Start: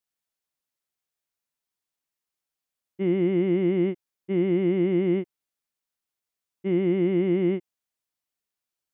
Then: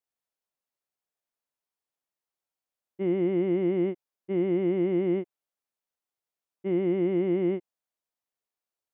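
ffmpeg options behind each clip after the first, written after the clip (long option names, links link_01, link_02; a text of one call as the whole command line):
ffmpeg -i in.wav -af "equalizer=frequency=650:width_type=o:width=2.1:gain=8,volume=-7dB" out.wav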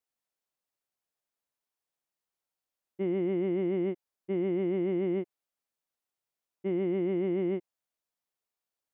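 ffmpeg -i in.wav -af "alimiter=limit=-23dB:level=0:latency=1" out.wav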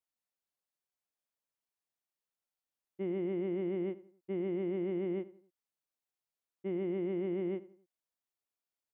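ffmpeg -i in.wav -filter_complex "[0:a]asplit=2[link_01][link_02];[link_02]adelay=88,lowpass=frequency=2700:poles=1,volume=-17dB,asplit=2[link_03][link_04];[link_04]adelay=88,lowpass=frequency=2700:poles=1,volume=0.39,asplit=2[link_05][link_06];[link_06]adelay=88,lowpass=frequency=2700:poles=1,volume=0.39[link_07];[link_01][link_03][link_05][link_07]amix=inputs=4:normalize=0,volume=-5.5dB" out.wav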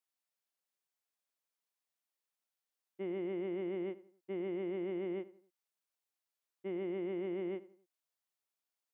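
ffmpeg -i in.wav -af "highpass=frequency=450:poles=1,volume=1dB" out.wav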